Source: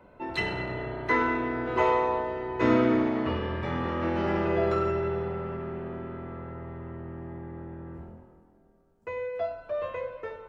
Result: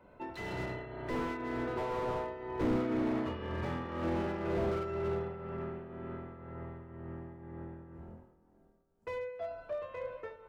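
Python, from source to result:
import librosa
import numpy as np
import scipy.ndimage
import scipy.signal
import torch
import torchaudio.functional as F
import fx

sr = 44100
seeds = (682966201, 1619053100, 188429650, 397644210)

y = fx.tremolo_shape(x, sr, shape='triangle', hz=2.0, depth_pct=65)
y = fx.slew_limit(y, sr, full_power_hz=22.0)
y = y * librosa.db_to_amplitude(-3.0)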